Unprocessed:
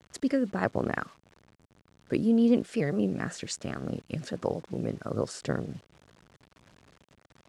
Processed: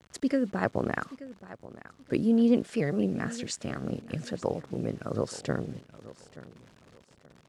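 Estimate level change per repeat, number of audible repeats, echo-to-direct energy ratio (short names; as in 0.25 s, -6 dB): -11.0 dB, 2, -16.5 dB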